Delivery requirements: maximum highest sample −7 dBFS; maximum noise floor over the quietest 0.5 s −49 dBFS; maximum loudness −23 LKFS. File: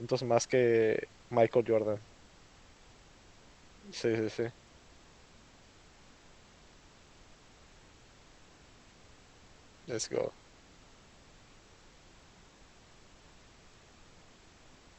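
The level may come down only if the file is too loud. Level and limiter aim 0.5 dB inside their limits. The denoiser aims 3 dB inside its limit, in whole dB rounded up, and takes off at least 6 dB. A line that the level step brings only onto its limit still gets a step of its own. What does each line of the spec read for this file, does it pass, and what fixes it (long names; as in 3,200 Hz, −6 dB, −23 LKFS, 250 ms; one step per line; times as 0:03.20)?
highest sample −12.5 dBFS: in spec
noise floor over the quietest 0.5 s −59 dBFS: in spec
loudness −31.5 LKFS: in spec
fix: no processing needed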